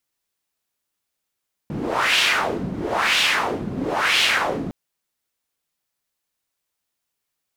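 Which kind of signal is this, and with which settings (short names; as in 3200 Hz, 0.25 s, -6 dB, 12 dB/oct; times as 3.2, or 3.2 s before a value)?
wind-like swept noise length 3.01 s, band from 200 Hz, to 3000 Hz, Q 2.4, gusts 3, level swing 9.5 dB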